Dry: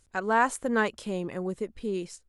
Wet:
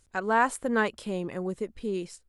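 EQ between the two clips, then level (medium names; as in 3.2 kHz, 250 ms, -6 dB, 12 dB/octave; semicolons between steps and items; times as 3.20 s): dynamic bell 6.4 kHz, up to -5 dB, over -58 dBFS, Q 4.1; 0.0 dB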